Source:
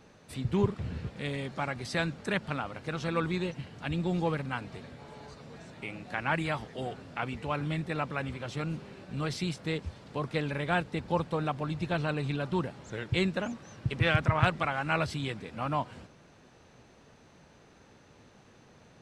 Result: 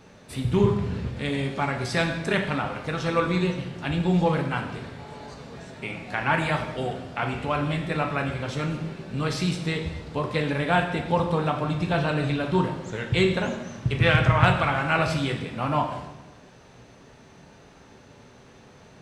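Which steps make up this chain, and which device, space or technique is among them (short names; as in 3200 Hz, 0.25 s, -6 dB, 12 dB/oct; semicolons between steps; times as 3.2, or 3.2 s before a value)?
bathroom (reverb RT60 1.0 s, pre-delay 3 ms, DRR 2.5 dB); gain +5 dB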